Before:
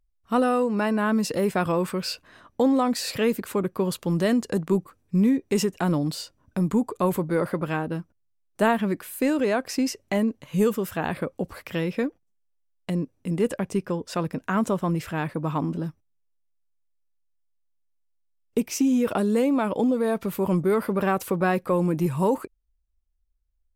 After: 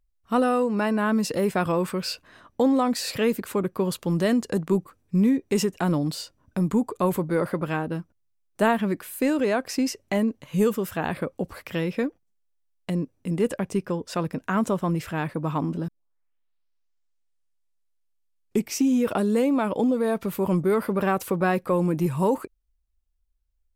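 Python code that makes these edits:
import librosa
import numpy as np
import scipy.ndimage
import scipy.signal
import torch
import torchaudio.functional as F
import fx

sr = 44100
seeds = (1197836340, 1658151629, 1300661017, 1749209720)

y = fx.edit(x, sr, fx.tape_start(start_s=15.88, length_s=2.95), tone=tone)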